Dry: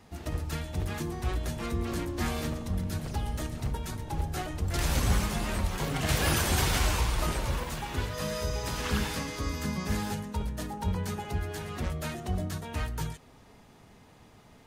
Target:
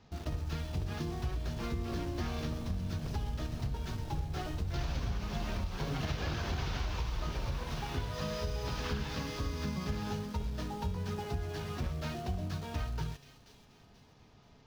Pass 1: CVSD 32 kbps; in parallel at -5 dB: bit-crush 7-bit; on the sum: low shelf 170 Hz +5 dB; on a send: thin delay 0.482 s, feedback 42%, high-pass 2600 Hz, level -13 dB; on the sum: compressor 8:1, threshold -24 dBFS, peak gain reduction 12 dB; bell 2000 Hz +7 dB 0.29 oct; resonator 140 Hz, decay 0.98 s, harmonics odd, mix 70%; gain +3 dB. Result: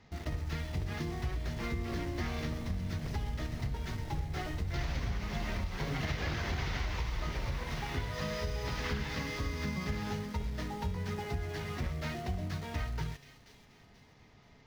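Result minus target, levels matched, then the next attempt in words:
2000 Hz band +4.0 dB
CVSD 32 kbps; in parallel at -5 dB: bit-crush 7-bit; on the sum: low shelf 170 Hz +5 dB; on a send: thin delay 0.482 s, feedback 42%, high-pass 2600 Hz, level -13 dB; on the sum: compressor 8:1, threshold -24 dBFS, peak gain reduction 12 dB; bell 2000 Hz -3.5 dB 0.29 oct; resonator 140 Hz, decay 0.98 s, harmonics odd, mix 70%; gain +3 dB

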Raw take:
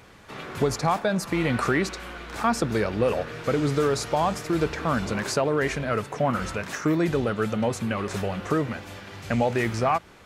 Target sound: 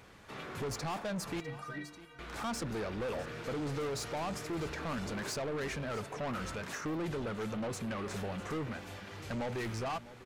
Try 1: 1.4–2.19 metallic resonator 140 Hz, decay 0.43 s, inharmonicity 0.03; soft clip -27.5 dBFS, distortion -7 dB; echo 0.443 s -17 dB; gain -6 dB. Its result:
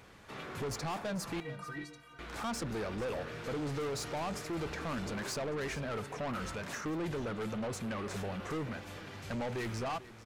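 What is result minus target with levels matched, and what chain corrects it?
echo 0.208 s early
1.4–2.19 metallic resonator 140 Hz, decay 0.43 s, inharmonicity 0.03; soft clip -27.5 dBFS, distortion -7 dB; echo 0.651 s -17 dB; gain -6 dB

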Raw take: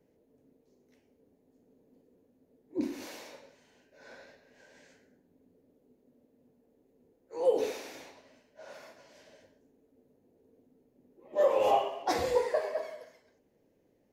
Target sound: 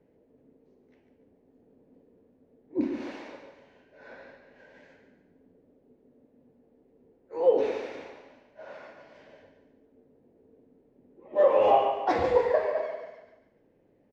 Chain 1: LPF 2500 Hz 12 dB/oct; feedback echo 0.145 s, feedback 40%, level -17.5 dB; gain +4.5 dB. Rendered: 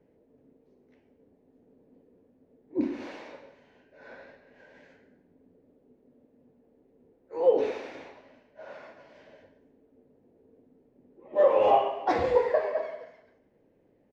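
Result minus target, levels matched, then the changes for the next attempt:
echo-to-direct -8.5 dB
change: feedback echo 0.145 s, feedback 40%, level -9 dB

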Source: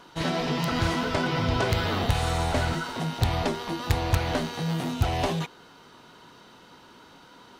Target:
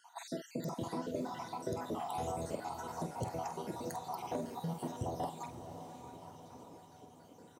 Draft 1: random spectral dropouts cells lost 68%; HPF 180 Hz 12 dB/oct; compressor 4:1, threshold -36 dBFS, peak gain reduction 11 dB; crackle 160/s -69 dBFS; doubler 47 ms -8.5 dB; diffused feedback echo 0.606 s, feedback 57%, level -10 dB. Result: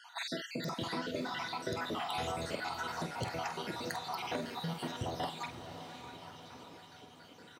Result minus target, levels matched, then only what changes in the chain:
2000 Hz band +11.0 dB
add after compressor: band shelf 2500 Hz -13.5 dB 2.2 oct

